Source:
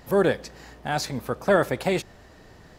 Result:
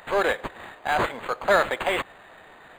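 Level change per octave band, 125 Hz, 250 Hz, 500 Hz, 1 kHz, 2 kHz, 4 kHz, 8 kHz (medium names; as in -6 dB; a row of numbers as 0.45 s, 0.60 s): -10.5 dB, -8.0 dB, -2.0 dB, +4.5 dB, +5.0 dB, +1.5 dB, -5.0 dB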